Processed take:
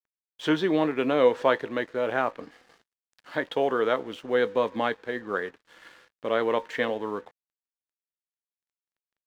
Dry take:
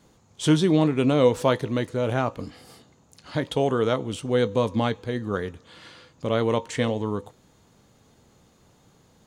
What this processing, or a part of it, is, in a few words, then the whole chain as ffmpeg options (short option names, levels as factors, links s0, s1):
pocket radio on a weak battery: -af "highpass=350,lowpass=3100,aeval=exprs='sgn(val(0))*max(abs(val(0))-0.00211,0)':c=same,equalizer=f=1700:t=o:w=0.44:g=6.5"